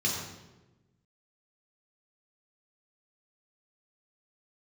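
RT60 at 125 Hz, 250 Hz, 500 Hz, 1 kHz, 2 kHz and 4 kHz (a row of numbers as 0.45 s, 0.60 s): 1.6 s, 1.5 s, 1.3 s, 0.95 s, 0.90 s, 0.80 s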